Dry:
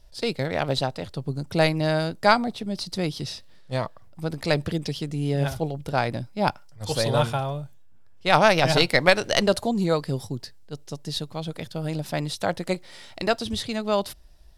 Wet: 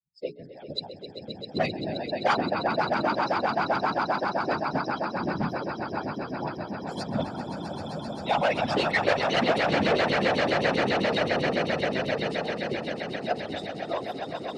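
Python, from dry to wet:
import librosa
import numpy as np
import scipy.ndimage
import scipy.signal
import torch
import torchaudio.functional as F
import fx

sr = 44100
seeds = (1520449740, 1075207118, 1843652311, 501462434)

y = fx.bin_expand(x, sr, power=3.0)
y = fx.echo_swell(y, sr, ms=131, loudest=8, wet_db=-9)
y = np.clip(y, -10.0 ** (-22.0 / 20.0), 10.0 ** (-22.0 / 20.0))
y = fx.whisperise(y, sr, seeds[0])
y = fx.bandpass_edges(y, sr, low_hz=150.0, high_hz=3800.0)
y = fx.hum_notches(y, sr, base_hz=60, count=7)
y = y * 10.0 ** (3.5 / 20.0)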